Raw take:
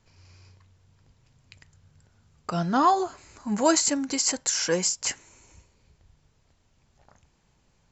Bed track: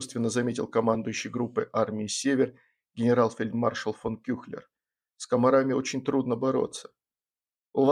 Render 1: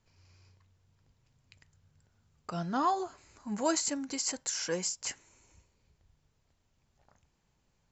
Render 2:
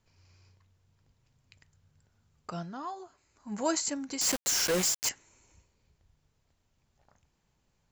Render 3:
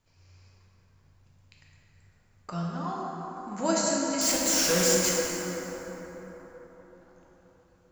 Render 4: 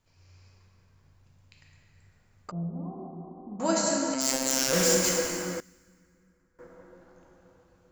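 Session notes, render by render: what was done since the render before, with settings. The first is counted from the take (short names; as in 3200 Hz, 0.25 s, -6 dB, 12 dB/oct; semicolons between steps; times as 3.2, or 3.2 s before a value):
gain -8.5 dB
2.51–3.59 dip -10.5 dB, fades 0.25 s; 4.21–5.09 companded quantiser 2-bit
plate-style reverb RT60 4.7 s, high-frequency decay 0.4×, DRR -4.5 dB
2.51–3.6 Gaussian blur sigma 14 samples; 4.14–4.73 robotiser 132 Hz; 5.6–6.59 passive tone stack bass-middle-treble 6-0-2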